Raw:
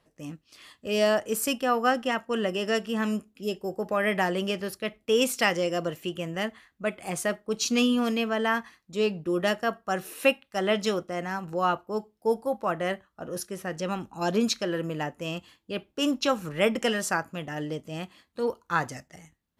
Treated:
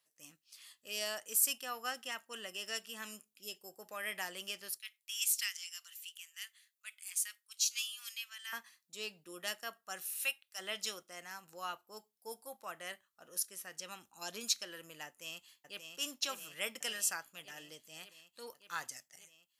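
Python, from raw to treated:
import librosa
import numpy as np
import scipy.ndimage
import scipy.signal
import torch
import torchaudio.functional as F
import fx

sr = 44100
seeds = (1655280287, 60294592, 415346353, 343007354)

y = fx.bessel_highpass(x, sr, hz=2300.0, order=4, at=(4.78, 8.53))
y = fx.highpass(y, sr, hz=1200.0, slope=6, at=(10.06, 10.58), fade=0.02)
y = fx.echo_throw(y, sr, start_s=15.06, length_s=0.84, ms=580, feedback_pct=75, wet_db=-5.5)
y = scipy.signal.sosfilt(scipy.signal.butter(2, 61.0, 'highpass', fs=sr, output='sos'), y)
y = scipy.signal.lfilter([1.0, -0.97], [1.0], y)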